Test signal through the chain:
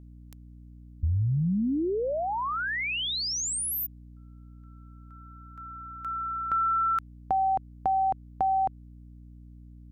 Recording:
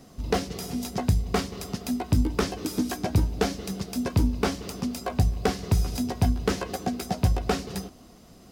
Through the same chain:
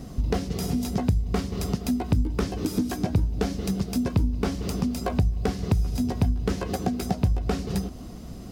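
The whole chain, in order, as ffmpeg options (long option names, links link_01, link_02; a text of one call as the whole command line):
ffmpeg -i in.wav -af "lowshelf=frequency=280:gain=11,acompressor=threshold=-29dB:ratio=3,aeval=exprs='val(0)+0.00282*(sin(2*PI*60*n/s)+sin(2*PI*2*60*n/s)/2+sin(2*PI*3*60*n/s)/3+sin(2*PI*4*60*n/s)/4+sin(2*PI*5*60*n/s)/5)':channel_layout=same,volume=4.5dB" out.wav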